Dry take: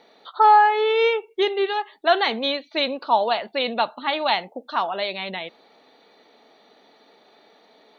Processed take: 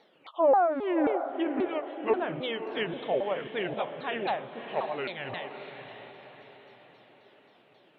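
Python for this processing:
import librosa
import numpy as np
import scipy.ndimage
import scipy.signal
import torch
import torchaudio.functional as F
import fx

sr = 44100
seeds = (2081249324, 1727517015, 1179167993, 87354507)

y = fx.pitch_ramps(x, sr, semitones=-8.5, every_ms=267)
y = fx.env_lowpass_down(y, sr, base_hz=1200.0, full_db=-17.0)
y = fx.echo_diffused(y, sr, ms=586, feedback_pct=46, wet_db=-9.0)
y = y * librosa.db_to_amplitude(-7.0)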